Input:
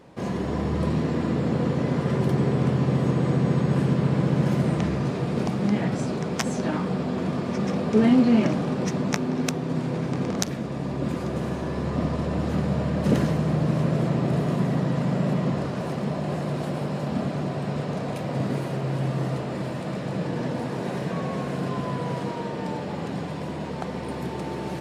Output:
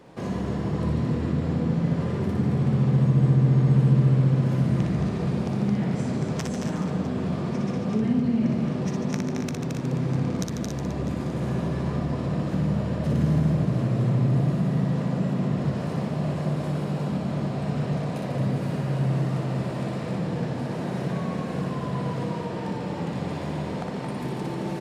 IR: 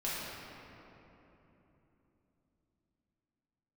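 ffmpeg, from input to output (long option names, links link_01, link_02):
-filter_complex "[0:a]asplit=2[link_01][link_02];[link_02]aecho=0:1:221:0.422[link_03];[link_01][link_03]amix=inputs=2:normalize=0,acrossover=split=190[link_04][link_05];[link_05]acompressor=threshold=-32dB:ratio=6[link_06];[link_04][link_06]amix=inputs=2:normalize=0,asplit=2[link_07][link_08];[link_08]aecho=0:1:60|144|261.6|426.2|656.7:0.631|0.398|0.251|0.158|0.1[link_09];[link_07][link_09]amix=inputs=2:normalize=0"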